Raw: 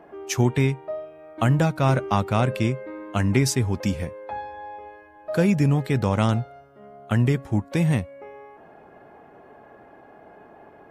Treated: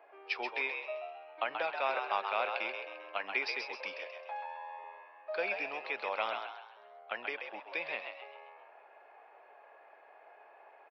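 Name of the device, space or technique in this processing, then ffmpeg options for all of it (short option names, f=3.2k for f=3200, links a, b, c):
musical greeting card: -filter_complex "[0:a]aresample=11025,aresample=44100,highpass=f=530:w=0.5412,highpass=f=530:w=1.3066,equalizer=f=2.4k:t=o:w=0.25:g=10.5,asettb=1/sr,asplit=3[a][b][c];[a]atrim=end=3.984[d];[b]atrim=start=3.98:end=4.84,asetpts=PTS-STARTPTS,afade=t=in:d=0.004:c=qsin,afade=t=out:st=0.856:d=0.004:c=qsin,highpass=f=410:w=0.5412,highpass=f=410:w=1.3066[e];[c]atrim=start=4.836[f];[d][e]acrossfade=d=0.004:c1=hsin:c2=qsin[g];[g][f]acrossfade=d=0.004:c1=qsin:c2=hsin,asplit=6[h][i][j][k][l][m];[i]adelay=132,afreqshift=82,volume=-6dB[n];[j]adelay=264,afreqshift=164,volume=-13.7dB[o];[k]adelay=396,afreqshift=246,volume=-21.5dB[p];[l]adelay=528,afreqshift=328,volume=-29.2dB[q];[m]adelay=660,afreqshift=410,volume=-37dB[r];[h][n][o][p][q][r]amix=inputs=6:normalize=0,volume=-8.5dB"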